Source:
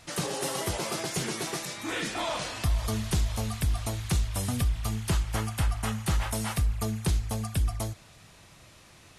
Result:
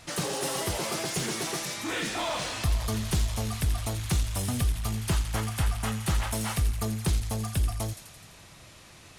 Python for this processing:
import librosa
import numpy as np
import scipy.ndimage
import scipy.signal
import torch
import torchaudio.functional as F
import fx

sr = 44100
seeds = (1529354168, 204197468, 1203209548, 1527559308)

p1 = fx.echo_wet_highpass(x, sr, ms=85, feedback_pct=67, hz=2500.0, wet_db=-8.5)
p2 = 10.0 ** (-33.5 / 20.0) * (np.abs((p1 / 10.0 ** (-33.5 / 20.0) + 3.0) % 4.0 - 2.0) - 1.0)
y = p1 + (p2 * librosa.db_to_amplitude(-9.0))